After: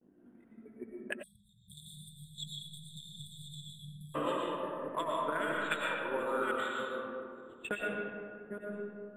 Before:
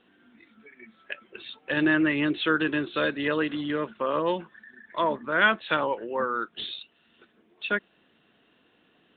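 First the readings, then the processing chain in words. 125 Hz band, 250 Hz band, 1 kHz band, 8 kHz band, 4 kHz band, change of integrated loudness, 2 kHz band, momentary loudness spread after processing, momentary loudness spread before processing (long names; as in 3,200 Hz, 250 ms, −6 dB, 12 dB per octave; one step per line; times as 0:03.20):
−8.0 dB, −14.5 dB, −7.5 dB, can't be measured, −10.0 dB, −11.0 dB, −11.5 dB, 16 LU, 16 LU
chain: delay that plays each chunk backwards 543 ms, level −14 dB
noise gate with hold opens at −55 dBFS
low-pass that shuts in the quiet parts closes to 450 Hz, open at −20.5 dBFS
high-shelf EQ 2,000 Hz +11 dB
in parallel at +1 dB: output level in coarse steps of 10 dB
on the sum: transient designer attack +10 dB, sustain −4 dB
downward compressor 5 to 1, threshold −27 dBFS, peak gain reduction 22 dB
two-band tremolo in antiphase 1.3 Hz, depth 50%, crossover 720 Hz
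bad sample-rate conversion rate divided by 4×, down filtered, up hold
high-frequency loss of the air 69 metres
comb and all-pass reverb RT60 2.3 s, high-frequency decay 0.4×, pre-delay 70 ms, DRR −3.5 dB
time-frequency box erased 0:01.23–0:04.15, 200–3,300 Hz
level −6 dB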